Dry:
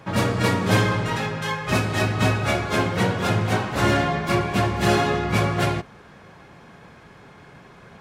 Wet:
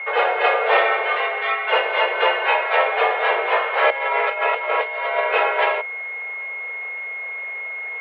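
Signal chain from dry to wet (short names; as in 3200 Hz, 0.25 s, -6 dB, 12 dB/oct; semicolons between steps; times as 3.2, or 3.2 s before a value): 3.9–5.2 negative-ratio compressor -25 dBFS, ratio -0.5; whine 1900 Hz -32 dBFS; mistuned SSB +260 Hz 210–2900 Hz; gain +5 dB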